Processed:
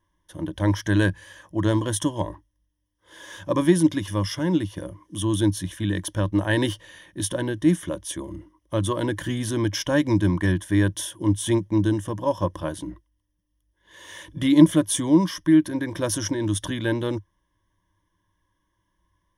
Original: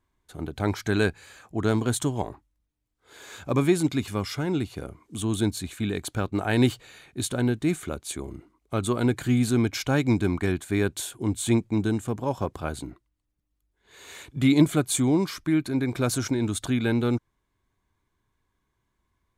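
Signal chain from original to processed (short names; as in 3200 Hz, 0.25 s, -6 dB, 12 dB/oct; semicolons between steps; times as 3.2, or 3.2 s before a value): ripple EQ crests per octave 1.2, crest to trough 15 dB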